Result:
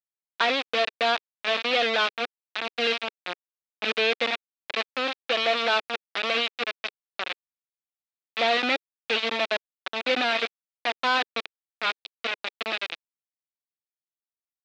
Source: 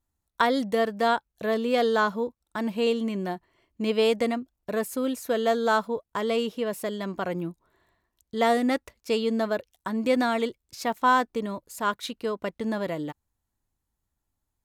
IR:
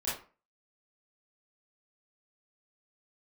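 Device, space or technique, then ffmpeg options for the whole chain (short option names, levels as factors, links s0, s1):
hand-held game console: -af "acrusher=bits=3:mix=0:aa=0.000001,highpass=420,equalizer=f=430:t=q:w=4:g=-4,equalizer=f=990:t=q:w=4:g=-7,equalizer=f=2500:t=q:w=4:g=7,equalizer=f=3700:t=q:w=4:g=6,lowpass=f=4300:w=0.5412,lowpass=f=4300:w=1.3066"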